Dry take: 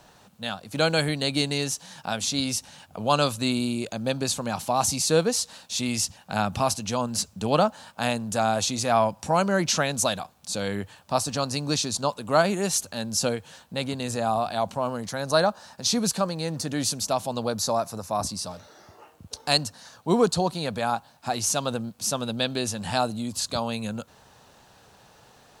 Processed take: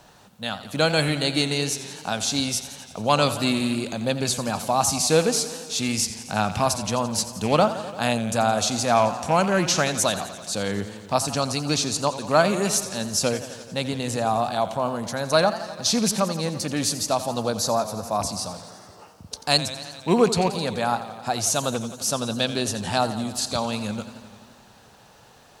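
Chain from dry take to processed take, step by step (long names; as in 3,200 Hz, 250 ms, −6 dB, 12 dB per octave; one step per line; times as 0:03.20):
loose part that buzzes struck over −28 dBFS, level −27 dBFS
feedback echo with a swinging delay time 86 ms, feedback 73%, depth 110 cents, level −13.5 dB
level +2 dB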